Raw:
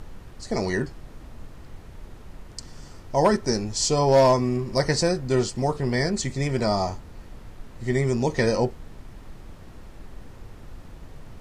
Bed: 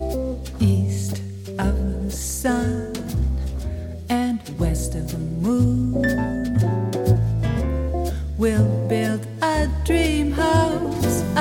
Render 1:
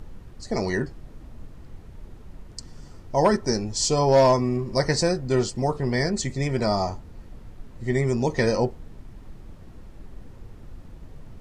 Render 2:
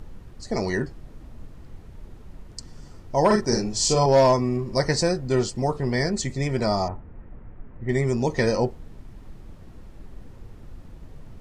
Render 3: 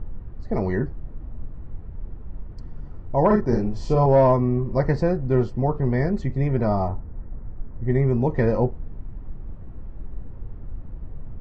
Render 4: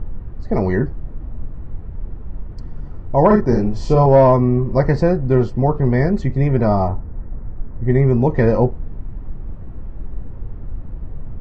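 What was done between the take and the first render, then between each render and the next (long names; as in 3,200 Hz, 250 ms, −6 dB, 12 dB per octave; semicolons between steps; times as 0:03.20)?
broadband denoise 6 dB, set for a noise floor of −45 dBFS
0:03.26–0:04.06: double-tracking delay 43 ms −3 dB; 0:06.88–0:07.89: inverse Chebyshev low-pass filter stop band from 6,900 Hz, stop band 60 dB
low-pass filter 1,500 Hz 12 dB per octave; low-shelf EQ 130 Hz +9.5 dB
level +6 dB; brickwall limiter −3 dBFS, peak gain reduction 2 dB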